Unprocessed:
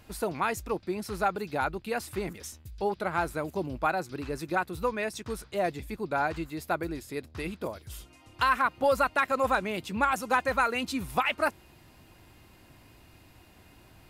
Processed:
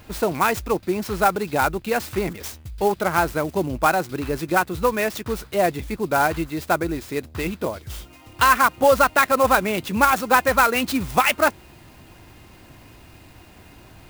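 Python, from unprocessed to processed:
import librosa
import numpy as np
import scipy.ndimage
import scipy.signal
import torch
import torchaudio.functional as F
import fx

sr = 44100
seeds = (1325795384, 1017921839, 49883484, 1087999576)

y = fx.clock_jitter(x, sr, seeds[0], jitter_ms=0.028)
y = F.gain(torch.from_numpy(y), 9.0).numpy()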